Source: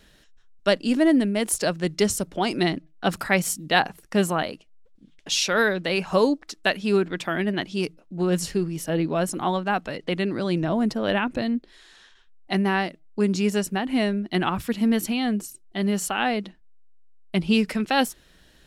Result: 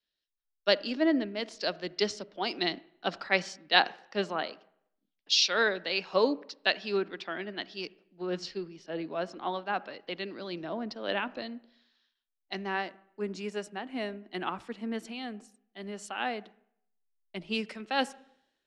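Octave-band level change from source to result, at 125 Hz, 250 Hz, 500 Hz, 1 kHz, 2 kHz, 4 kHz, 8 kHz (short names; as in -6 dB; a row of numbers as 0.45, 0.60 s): -17.5, -13.0, -7.5, -7.0, -5.5, -2.0, -13.0 dB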